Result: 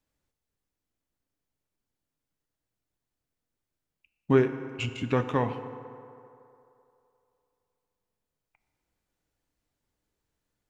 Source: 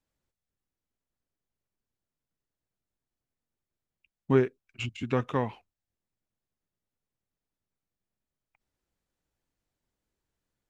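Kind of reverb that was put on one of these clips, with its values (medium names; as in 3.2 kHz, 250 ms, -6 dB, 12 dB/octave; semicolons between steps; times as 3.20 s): FDN reverb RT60 2.8 s, low-frequency decay 0.7×, high-frequency decay 0.5×, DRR 8.5 dB; trim +2 dB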